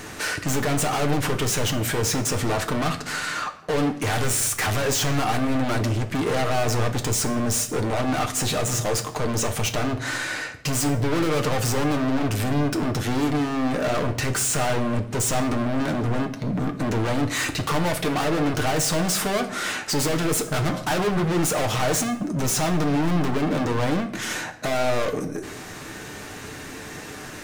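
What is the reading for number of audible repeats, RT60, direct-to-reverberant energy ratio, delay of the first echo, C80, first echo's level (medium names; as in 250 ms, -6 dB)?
no echo, 0.80 s, 4.0 dB, no echo, 15.0 dB, no echo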